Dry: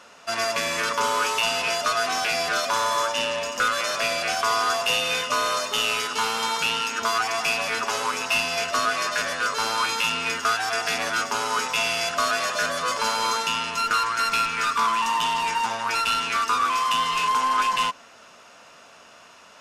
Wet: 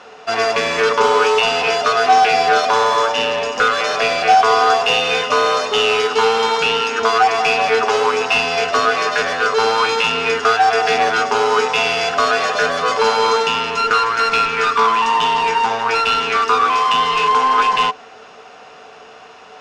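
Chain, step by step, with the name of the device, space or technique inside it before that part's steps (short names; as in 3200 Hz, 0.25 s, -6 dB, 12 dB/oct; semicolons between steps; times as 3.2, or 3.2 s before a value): inside a cardboard box (LPF 4600 Hz 12 dB/oct; small resonant body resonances 440/750 Hz, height 16 dB, ringing for 0.1 s); gain +7 dB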